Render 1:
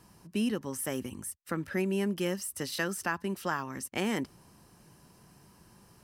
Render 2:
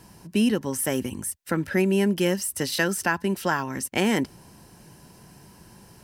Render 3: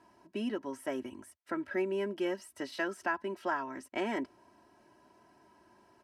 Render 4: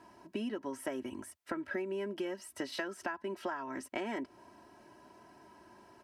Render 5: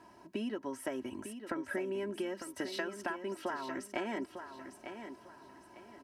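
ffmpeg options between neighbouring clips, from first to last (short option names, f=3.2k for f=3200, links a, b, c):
-af "bandreject=f=1.2k:w=6.6,volume=8.5dB"
-af "bandpass=f=790:t=q:w=0.6:csg=0,aecho=1:1:3.1:0.68,volume=-8.5dB"
-af "acompressor=threshold=-39dB:ratio=10,volume=5dB"
-af "aecho=1:1:901|1802|2703:0.355|0.106|0.0319"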